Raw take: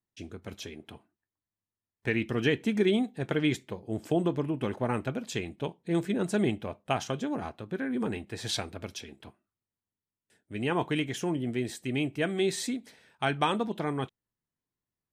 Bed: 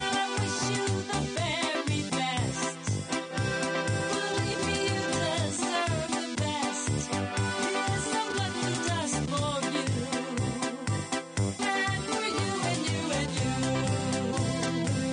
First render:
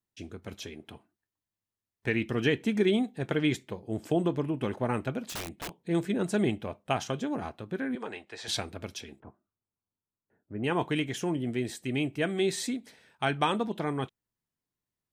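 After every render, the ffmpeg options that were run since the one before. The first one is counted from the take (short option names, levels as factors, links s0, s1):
-filter_complex "[0:a]asettb=1/sr,asplit=3[s0][s1][s2];[s0]atrim=end=5.294[s3];[s1]atrim=start=5.29:end=5.75,asetpts=PTS-STARTPTS,afade=t=in:d=0.004:c=qsin,afade=t=out:st=0.456:d=0.004:c=qsin,aeval=exprs='(mod(35.5*val(0)+1,2)-1)/35.5':c=same[s4];[s2]atrim=start=5.746[s5];[s3][s4]acrossfade=d=0.004:c1=hsin:c2=qsin[s6];[s6][s5]acrossfade=d=0.004:c1=qsin:c2=hsin,asettb=1/sr,asplit=3[s7][s8][s9];[s7]atrim=end=7.954[s10];[s8]atrim=start=7.95:end=8.48,asetpts=PTS-STARTPTS,afade=t=in:d=0.004:c=qsin,afade=t=out:st=0.526:d=0.004:c=qsin,acrossover=split=430 7500:gain=0.126 1 0.0891[s11][s12][s13];[s11][s12][s13]amix=inputs=3:normalize=0[s14];[s9]atrim=start=8.476[s15];[s10][s14]acrossfade=d=0.004:c1=hsin:c2=qsin[s16];[s16][s15]acrossfade=d=0.004:c1=qsin:c2=hsin,asettb=1/sr,asplit=3[s17][s18][s19];[s17]atrim=end=9.204[s20];[s18]atrim=start=9.2:end=10.64,asetpts=PTS-STARTPTS,afade=t=in:d=0.004:c=qsin,afade=t=out:st=1.436:d=0.004:c=qsin,lowpass=f=1400:w=0.5412,lowpass=f=1400:w=1.3066[s21];[s19]atrim=start=10.636[s22];[s20][s21]acrossfade=d=0.004:c1=hsin:c2=qsin[s23];[s23][s22]acrossfade=d=0.004:c1=qsin:c2=hsin"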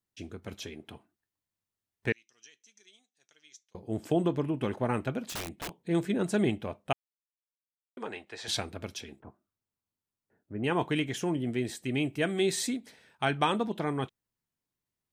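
-filter_complex "[0:a]asettb=1/sr,asplit=3[s0][s1][s2];[s0]atrim=end=2.124[s3];[s1]atrim=start=2.12:end=3.75,asetpts=PTS-STARTPTS,afade=t=in:d=0.004:c=qsin,afade=t=out:st=1.626:d=0.004:c=qsin,bandpass=f=6000:t=q:w=9.3[s4];[s2]atrim=start=3.746[s5];[s3][s4]acrossfade=d=0.004:c1=hsin:c2=qsin[s6];[s6][s5]acrossfade=d=0.004:c1=qsin:c2=hsin,asettb=1/sr,asplit=3[s7][s8][s9];[s7]atrim=end=12.054[s10];[s8]atrim=start=12.05:end=12.78,asetpts=PTS-STARTPTS,afade=t=in:d=0.004:c=qsin,afade=t=out:st=0.726:d=0.004:c=qsin,highshelf=f=5500:g=4.5[s11];[s9]atrim=start=12.776[s12];[s10][s11]acrossfade=d=0.004:c1=hsin:c2=qsin[s13];[s13][s12]acrossfade=d=0.004:c1=qsin:c2=hsin,asplit=3[s14][s15][s16];[s14]atrim=end=6.93,asetpts=PTS-STARTPTS,afade=t=out:st=6.926:d=0.004:c=hsin[s17];[s15]atrim=start=6.93:end=7.97,asetpts=PTS-STARTPTS,volume=0[s18];[s16]atrim=start=7.97,asetpts=PTS-STARTPTS,afade=t=in:d=0.004:c=hsin[s19];[s17][s18][s19]concat=n=3:v=0:a=1"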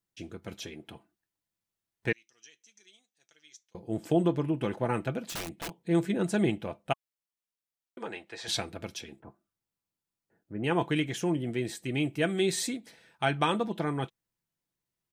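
-af "bandreject=f=1100:w=21,aecho=1:1:6:0.32"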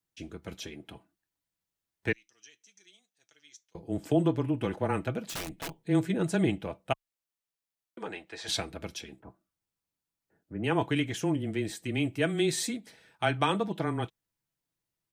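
-af "afreqshift=-14"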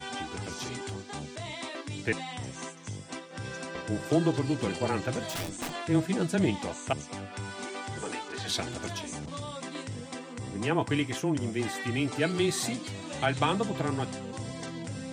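-filter_complex "[1:a]volume=0.355[s0];[0:a][s0]amix=inputs=2:normalize=0"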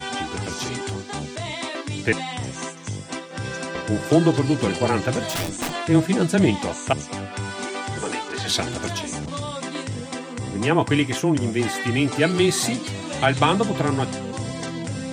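-af "volume=2.66"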